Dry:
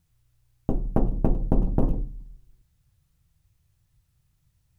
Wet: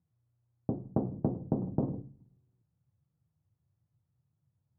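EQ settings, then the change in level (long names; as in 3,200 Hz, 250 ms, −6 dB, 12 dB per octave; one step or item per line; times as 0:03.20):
high-pass filter 100 Hz 24 dB per octave
low-pass filter 1,000 Hz 12 dB per octave
high-frequency loss of the air 460 metres
−4.5 dB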